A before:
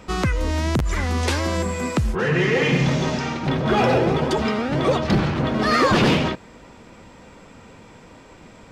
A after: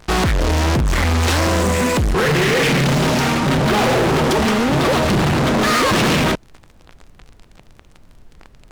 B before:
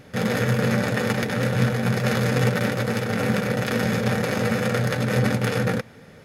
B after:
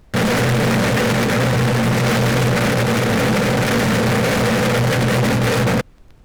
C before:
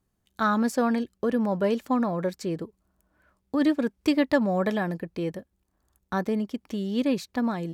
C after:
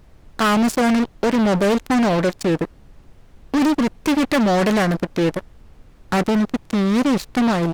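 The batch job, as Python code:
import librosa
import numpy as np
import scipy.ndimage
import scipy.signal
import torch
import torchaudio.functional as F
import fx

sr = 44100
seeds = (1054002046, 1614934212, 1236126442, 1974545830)

y = fx.fuzz(x, sr, gain_db=31.0, gate_db=-37.0)
y = fx.dmg_noise_colour(y, sr, seeds[0], colour='brown', level_db=-43.0)
y = fx.doppler_dist(y, sr, depth_ms=0.26)
y = y * 10.0 ** (-1.0 / 20.0)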